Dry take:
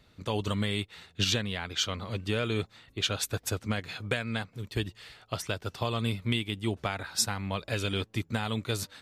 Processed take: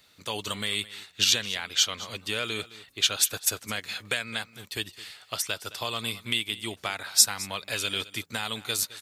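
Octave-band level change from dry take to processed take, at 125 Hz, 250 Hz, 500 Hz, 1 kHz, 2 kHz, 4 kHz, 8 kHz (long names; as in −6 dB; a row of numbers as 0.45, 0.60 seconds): −11.0, −7.0, −3.5, 0.0, +3.5, +6.5, +10.0 decibels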